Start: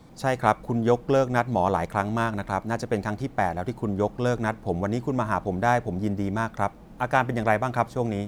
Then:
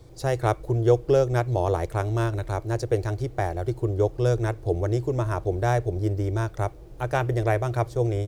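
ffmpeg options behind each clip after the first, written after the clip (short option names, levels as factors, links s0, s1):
-af "firequalizer=gain_entry='entry(120,0);entry(210,-28);entry(340,-1);entry(860,-14);entry(4900,-6)':delay=0.05:min_phase=1,volume=2.24"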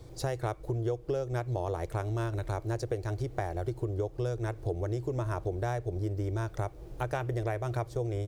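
-af "acompressor=threshold=0.0355:ratio=6"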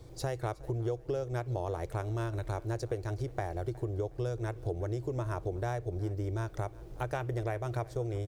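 -af "aecho=1:1:365|730:0.0841|0.0278,volume=0.794"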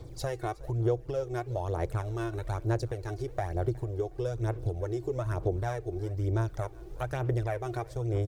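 -af "aphaser=in_gain=1:out_gain=1:delay=2.8:decay=0.52:speed=1.1:type=sinusoidal"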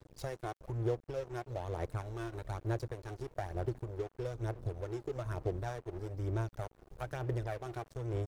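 -af "aeval=exprs='sgn(val(0))*max(abs(val(0))-0.0075,0)':c=same,volume=0.562"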